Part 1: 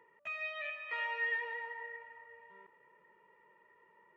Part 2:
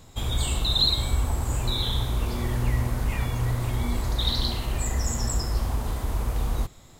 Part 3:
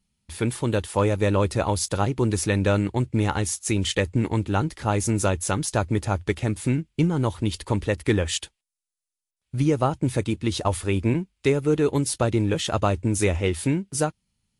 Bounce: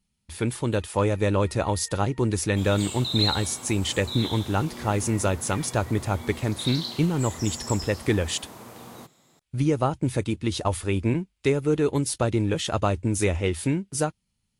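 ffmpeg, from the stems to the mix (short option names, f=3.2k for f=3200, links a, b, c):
-filter_complex "[0:a]adelay=550,volume=-16.5dB[a];[1:a]highpass=f=150:w=0.5412,highpass=f=150:w=1.3066,adynamicequalizer=threshold=0.00708:dfrequency=5900:dqfactor=0.79:tfrequency=5900:tqfactor=0.79:attack=5:release=100:ratio=0.375:range=3:mode=boostabove:tftype=bell,adelay=2400,volume=-7dB[b];[2:a]volume=-1.5dB[c];[a][b][c]amix=inputs=3:normalize=0"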